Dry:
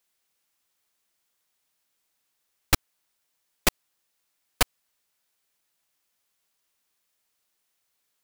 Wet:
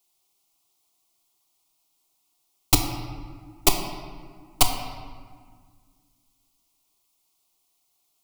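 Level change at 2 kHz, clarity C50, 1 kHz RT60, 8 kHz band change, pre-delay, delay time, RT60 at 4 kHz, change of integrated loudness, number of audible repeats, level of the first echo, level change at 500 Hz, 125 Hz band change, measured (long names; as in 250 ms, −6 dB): −2.5 dB, 6.0 dB, 1.8 s, +5.5 dB, 3 ms, no echo audible, 1.1 s, +2.0 dB, no echo audible, no echo audible, +3.5 dB, +5.0 dB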